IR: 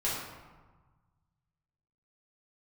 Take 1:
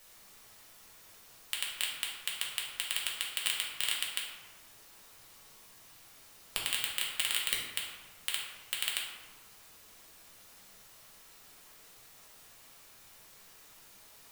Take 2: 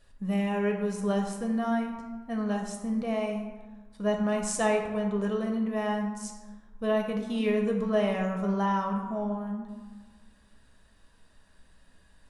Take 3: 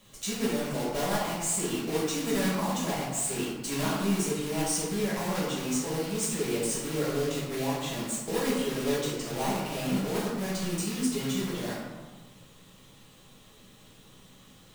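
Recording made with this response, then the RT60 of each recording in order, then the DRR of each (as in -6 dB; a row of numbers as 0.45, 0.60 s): 3; 1.4, 1.4, 1.4 s; -3.5, 1.5, -8.5 dB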